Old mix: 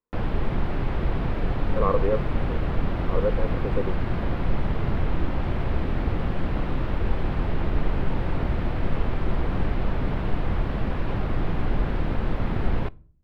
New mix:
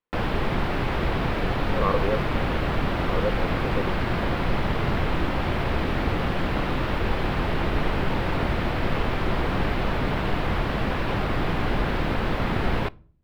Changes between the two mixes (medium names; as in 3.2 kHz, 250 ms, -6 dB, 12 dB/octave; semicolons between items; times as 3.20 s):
background +6.5 dB; master: add tilt EQ +2 dB/octave